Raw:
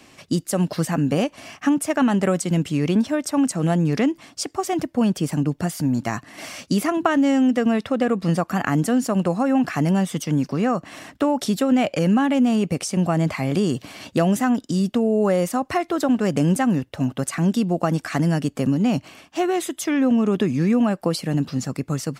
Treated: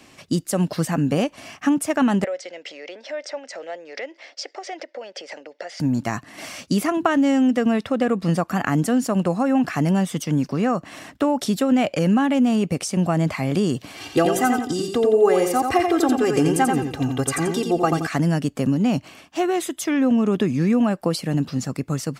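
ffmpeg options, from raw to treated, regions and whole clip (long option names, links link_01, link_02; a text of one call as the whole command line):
ffmpeg -i in.wav -filter_complex "[0:a]asettb=1/sr,asplit=3[link_01][link_02][link_03];[link_01]atrim=end=2.244[link_04];[link_02]atrim=start=2.24:end=5.8,asetpts=PTS-STARTPTS,afade=type=in:duration=0.004:curve=qsin,afade=type=out:start_time=3.556:duration=0.004:curve=qsin,acompressor=threshold=-25dB:ratio=12:attack=3.2:release=140:knee=1:detection=peak,highpass=frequency=460:width=0.5412,highpass=frequency=460:width=1.3066,equalizer=frequency=550:width_type=q:width=4:gain=10,equalizer=frequency=1100:width_type=q:width=4:gain=-9,equalizer=frequency=2000:width_type=q:width=4:gain=9,equalizer=frequency=5100:width_type=q:width=4:gain=4,lowpass=frequency=5600:width=0.5412,lowpass=frequency=5600:width=1.3066[link_05];[link_03]atrim=start=5.796[link_06];[link_04][link_05]acrossfade=duration=0.004:curve1=hsin:curve2=qsin[link_07];[link_07][link_06]acrossfade=duration=0.004:curve1=qsin:curve2=hsin,asettb=1/sr,asplit=3[link_08][link_09][link_10];[link_08]atrim=end=13.974[link_11];[link_09]atrim=start=13.97:end=18.07,asetpts=PTS-STARTPTS,afade=type=in:duration=0.004:curve=qsin,afade=type=out:start_time=4.096:duration=0.004:curve=qsin,aecho=1:1:2.5:0.87,atrim=end_sample=180810,aecho=1:1:87|174|261|348:0.562|0.186|0.0612|0.0202,atrim=end_sample=180810[link_12];[link_10]atrim=start=18.066[link_13];[link_11][link_12]acrossfade=duration=0.004:curve1=hsin:curve2=qsin[link_14];[link_14][link_13]acrossfade=duration=0.004:curve1=qsin:curve2=hsin" out.wav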